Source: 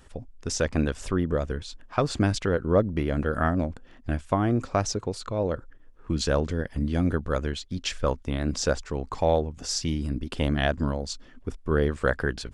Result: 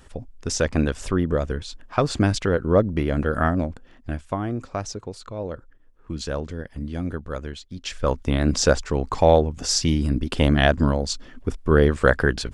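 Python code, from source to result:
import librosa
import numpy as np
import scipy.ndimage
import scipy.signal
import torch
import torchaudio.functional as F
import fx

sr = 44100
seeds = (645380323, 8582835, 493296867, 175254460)

y = fx.gain(x, sr, db=fx.line((3.43, 3.5), (4.57, -4.0), (7.79, -4.0), (8.23, 7.0)))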